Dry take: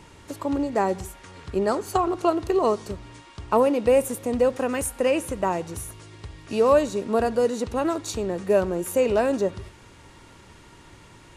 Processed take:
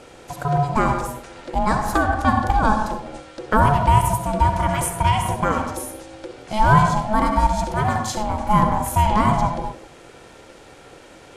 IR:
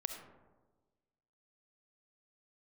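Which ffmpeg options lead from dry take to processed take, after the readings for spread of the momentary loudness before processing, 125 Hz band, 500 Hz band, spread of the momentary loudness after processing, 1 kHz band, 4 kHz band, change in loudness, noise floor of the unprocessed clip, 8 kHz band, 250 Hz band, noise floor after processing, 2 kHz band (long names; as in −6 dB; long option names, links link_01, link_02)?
18 LU, +16.0 dB, −5.0 dB, 15 LU, +10.5 dB, +5.5 dB, +4.0 dB, −50 dBFS, +3.5 dB, +2.5 dB, −45 dBFS, +9.0 dB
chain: -filter_complex "[1:a]atrim=start_sample=2205,afade=type=out:start_time=0.32:duration=0.01,atrim=end_sample=14553[link_01];[0:a][link_01]afir=irnorm=-1:irlink=0,aeval=exprs='val(0)*sin(2*PI*430*n/s)':channel_layout=same,volume=7.5dB"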